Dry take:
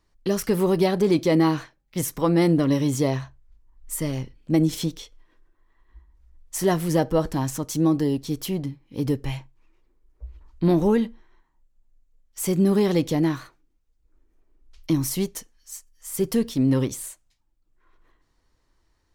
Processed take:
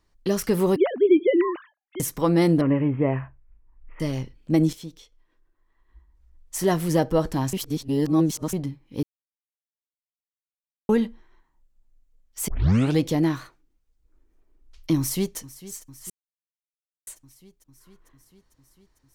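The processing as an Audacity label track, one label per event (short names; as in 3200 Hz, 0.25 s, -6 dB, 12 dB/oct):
0.760000	2.000000	sine-wave speech
2.610000	4.000000	steep low-pass 2700 Hz 72 dB/oct
4.730000	6.840000	fade in, from -13.5 dB
7.530000	8.530000	reverse
9.030000	10.890000	mute
12.480000	12.480000	tape start 0.52 s
14.980000	15.380000	echo throw 0.45 s, feedback 75%, level -17 dB
16.100000	17.070000	mute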